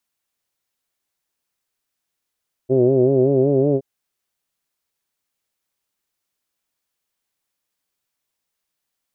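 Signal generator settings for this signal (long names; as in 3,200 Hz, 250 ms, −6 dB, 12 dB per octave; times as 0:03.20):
vowel from formants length 1.12 s, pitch 126 Hz, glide +2 semitones, F1 370 Hz, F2 610 Hz, F3 2,600 Hz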